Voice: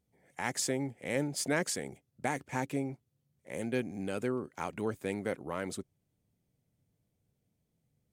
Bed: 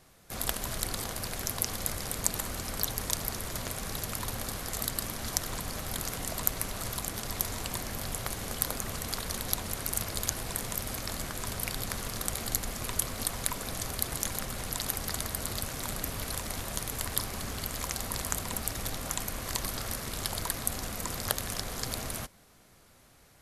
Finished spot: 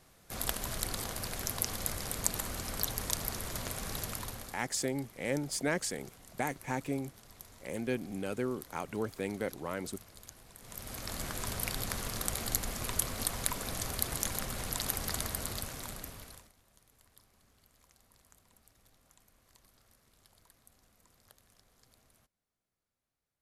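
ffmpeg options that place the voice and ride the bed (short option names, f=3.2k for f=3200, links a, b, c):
-filter_complex "[0:a]adelay=4150,volume=-1dB[a];[1:a]volume=16dB,afade=t=out:st=4.03:d=0.63:silence=0.133352,afade=t=in:st=10.59:d=0.71:silence=0.11885,afade=t=out:st=15.24:d=1.28:silence=0.0334965[b];[a][b]amix=inputs=2:normalize=0"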